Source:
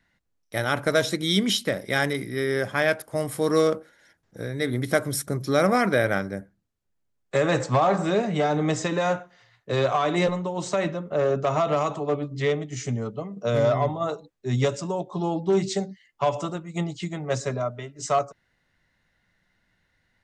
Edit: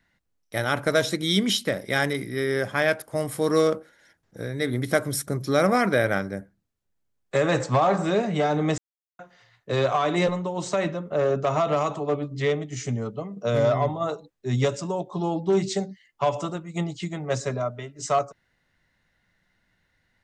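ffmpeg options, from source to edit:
-filter_complex "[0:a]asplit=3[s0][s1][s2];[s0]atrim=end=8.78,asetpts=PTS-STARTPTS,afade=t=out:st=8.776:d=0.004:c=hsin[s3];[s1]atrim=start=8.78:end=9.19,asetpts=PTS-STARTPTS,volume=0[s4];[s2]atrim=start=9.19,asetpts=PTS-STARTPTS,afade=t=in:d=0.004:c=hsin[s5];[s3][s4][s5]concat=n=3:v=0:a=1"

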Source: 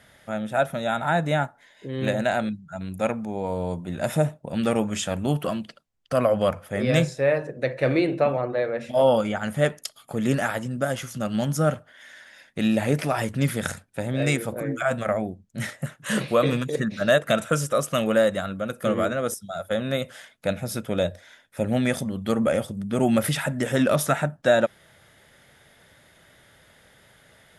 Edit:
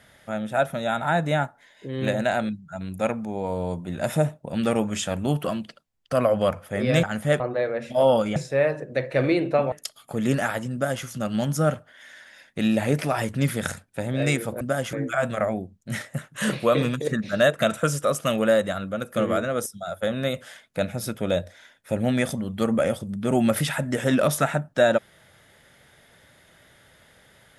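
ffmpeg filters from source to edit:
-filter_complex "[0:a]asplit=7[s0][s1][s2][s3][s4][s5][s6];[s0]atrim=end=7.032[s7];[s1]atrim=start=9.348:end=9.722[s8];[s2]atrim=start=8.388:end=9.352[s9];[s3]atrim=start=7.028:end=8.392[s10];[s4]atrim=start=9.718:end=14.612[s11];[s5]atrim=start=10.728:end=11.052[s12];[s6]atrim=start=14.608[s13];[s7][s8]acrossfade=d=0.004:c1=hsin:c2=hsin[s14];[s14][s9]acrossfade=d=0.004:c1=hsin:c2=hsin[s15];[s15][s10]acrossfade=d=0.004:c1=hsin:c2=hsin[s16];[s16][s11]acrossfade=d=0.004:c1=hsin:c2=hsin[s17];[s17][s12]acrossfade=d=0.004:c1=hsin:c2=hsin[s18];[s18][s13]acrossfade=d=0.004:c1=hsin:c2=hsin"

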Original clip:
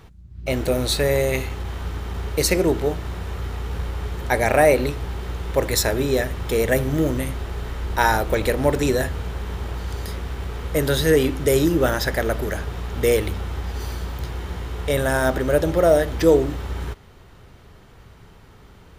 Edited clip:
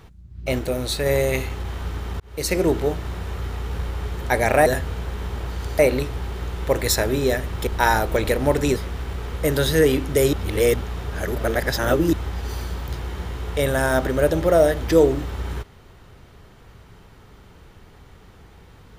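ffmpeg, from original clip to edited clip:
-filter_complex "[0:a]asplit=10[s0][s1][s2][s3][s4][s5][s6][s7][s8][s9];[s0]atrim=end=0.592[s10];[s1]atrim=start=0.588:end=1.062,asetpts=PTS-STARTPTS,volume=0.668[s11];[s2]atrim=start=1.058:end=2.2,asetpts=PTS-STARTPTS,afade=t=out:st=1.138:d=0.004:c=hsin[s12];[s3]atrim=start=2.2:end=4.662,asetpts=PTS-STARTPTS,afade=t=in:d=0.45[s13];[s4]atrim=start=8.938:end=10.072[s14];[s5]atrim=start=4.658:end=6.542[s15];[s6]atrim=start=7.848:end=8.942[s16];[s7]atrim=start=10.068:end=11.642[s17];[s8]atrim=start=11.638:end=13.442,asetpts=PTS-STARTPTS,areverse[s18];[s9]atrim=start=13.438[s19];[s10][s11]acrossfade=d=0.004:c1=hsin:c2=hsin[s20];[s12][s13]concat=n=2:v=0:a=1[s21];[s20][s21]acrossfade=d=0.004:c1=hsin:c2=hsin[s22];[s22][s14]acrossfade=d=0.004:c1=hsin:c2=hsin[s23];[s23][s15]acrossfade=d=0.004:c1=hsin:c2=hsin[s24];[s24][s16]acrossfade=d=0.004:c1=hsin:c2=hsin[s25];[s25][s17]acrossfade=d=0.004:c1=hsin:c2=hsin[s26];[s26][s18]acrossfade=d=0.004:c1=hsin:c2=hsin[s27];[s27][s19]acrossfade=d=0.004:c1=hsin:c2=hsin"

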